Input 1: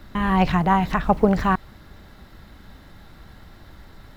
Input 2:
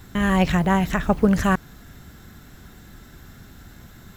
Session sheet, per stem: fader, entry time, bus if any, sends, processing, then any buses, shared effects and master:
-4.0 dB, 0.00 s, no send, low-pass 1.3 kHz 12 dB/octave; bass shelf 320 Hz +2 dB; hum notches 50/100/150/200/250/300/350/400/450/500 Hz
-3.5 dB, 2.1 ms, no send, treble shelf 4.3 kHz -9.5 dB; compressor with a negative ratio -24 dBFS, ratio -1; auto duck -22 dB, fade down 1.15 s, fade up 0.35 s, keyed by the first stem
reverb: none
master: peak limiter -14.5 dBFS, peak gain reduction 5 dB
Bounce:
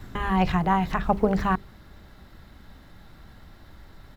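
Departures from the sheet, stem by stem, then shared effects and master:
stem 1: missing low-pass 1.3 kHz 12 dB/octave; master: missing peak limiter -14.5 dBFS, peak gain reduction 5 dB

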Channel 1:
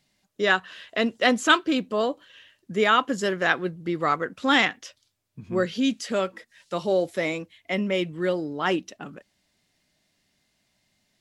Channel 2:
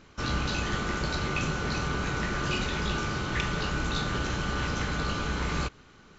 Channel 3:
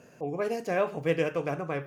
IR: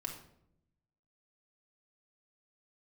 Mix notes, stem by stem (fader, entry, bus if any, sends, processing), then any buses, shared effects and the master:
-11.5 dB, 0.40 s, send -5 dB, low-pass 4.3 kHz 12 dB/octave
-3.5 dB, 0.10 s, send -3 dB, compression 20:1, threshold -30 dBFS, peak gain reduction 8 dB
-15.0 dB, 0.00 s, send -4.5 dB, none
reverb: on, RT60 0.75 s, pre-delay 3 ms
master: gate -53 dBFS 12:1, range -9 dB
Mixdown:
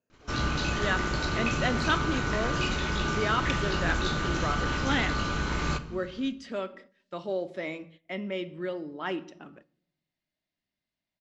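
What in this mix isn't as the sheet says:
stem 2: missing compression 20:1, threshold -30 dBFS, peak gain reduction 8 dB; stem 3 -15.0 dB -> -25.5 dB

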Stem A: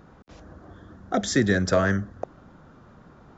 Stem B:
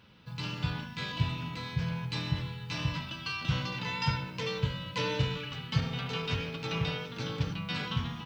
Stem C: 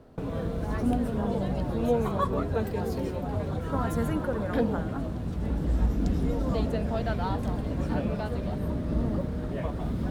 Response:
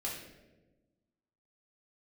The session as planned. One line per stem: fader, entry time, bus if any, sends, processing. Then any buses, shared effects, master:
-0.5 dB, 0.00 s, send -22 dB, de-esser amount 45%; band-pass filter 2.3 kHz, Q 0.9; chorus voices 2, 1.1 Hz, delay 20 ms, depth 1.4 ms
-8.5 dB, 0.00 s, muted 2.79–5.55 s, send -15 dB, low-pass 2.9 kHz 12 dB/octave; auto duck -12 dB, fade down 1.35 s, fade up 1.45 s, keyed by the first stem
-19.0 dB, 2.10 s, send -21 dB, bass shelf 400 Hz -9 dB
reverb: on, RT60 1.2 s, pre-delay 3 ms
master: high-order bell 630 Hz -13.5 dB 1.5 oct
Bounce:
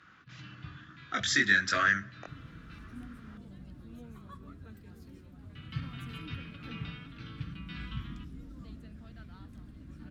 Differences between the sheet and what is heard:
stem A -0.5 dB -> +8.0 dB; stem C: missing bass shelf 400 Hz -9 dB

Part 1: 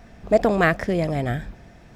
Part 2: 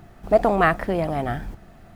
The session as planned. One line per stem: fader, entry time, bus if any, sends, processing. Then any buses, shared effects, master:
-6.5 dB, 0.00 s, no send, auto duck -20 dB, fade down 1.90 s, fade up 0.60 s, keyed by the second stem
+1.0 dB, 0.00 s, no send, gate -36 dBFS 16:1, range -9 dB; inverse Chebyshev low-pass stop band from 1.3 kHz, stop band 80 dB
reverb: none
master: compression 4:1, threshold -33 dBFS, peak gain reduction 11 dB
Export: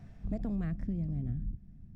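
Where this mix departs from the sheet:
stem 1 -6.5 dB -> -13.5 dB; stem 2 +1.0 dB -> +7.0 dB

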